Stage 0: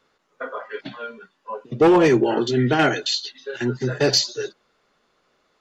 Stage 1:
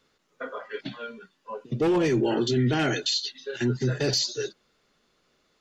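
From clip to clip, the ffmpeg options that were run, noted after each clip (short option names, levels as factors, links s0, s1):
-af "equalizer=f=920:t=o:w=2.5:g=-8.5,alimiter=limit=0.119:level=0:latency=1:release=13,volume=1.26"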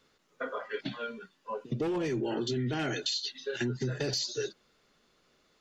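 -af "acompressor=threshold=0.0355:ratio=6"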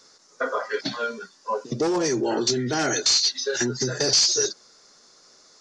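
-filter_complex "[0:a]highshelf=f=4000:t=q:w=3:g=11.5,asplit=2[s0][s1];[s1]highpass=f=720:p=1,volume=6.31,asoftclip=type=tanh:threshold=0.398[s2];[s0][s2]amix=inputs=2:normalize=0,lowpass=f=2200:p=1,volume=0.501,aresample=22050,aresample=44100,volume=1.5"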